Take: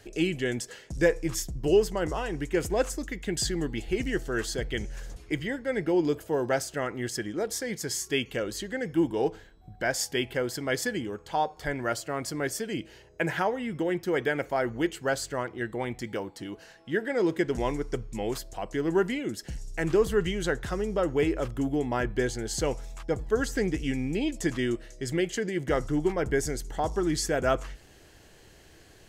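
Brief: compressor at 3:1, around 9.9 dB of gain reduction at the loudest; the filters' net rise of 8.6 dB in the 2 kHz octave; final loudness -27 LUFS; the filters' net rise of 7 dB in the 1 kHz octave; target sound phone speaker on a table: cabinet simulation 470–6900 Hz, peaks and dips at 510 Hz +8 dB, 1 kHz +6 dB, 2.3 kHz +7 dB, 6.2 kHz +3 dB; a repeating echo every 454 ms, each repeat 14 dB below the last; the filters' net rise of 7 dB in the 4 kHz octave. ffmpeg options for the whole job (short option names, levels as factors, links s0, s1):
-af "equalizer=f=1000:t=o:g=4,equalizer=f=2000:t=o:g=4.5,equalizer=f=4000:t=o:g=6.5,acompressor=threshold=0.0316:ratio=3,highpass=f=470:w=0.5412,highpass=f=470:w=1.3066,equalizer=f=510:t=q:w=4:g=8,equalizer=f=1000:t=q:w=4:g=6,equalizer=f=2300:t=q:w=4:g=7,equalizer=f=6200:t=q:w=4:g=3,lowpass=f=6900:w=0.5412,lowpass=f=6900:w=1.3066,aecho=1:1:454|908:0.2|0.0399,volume=1.78"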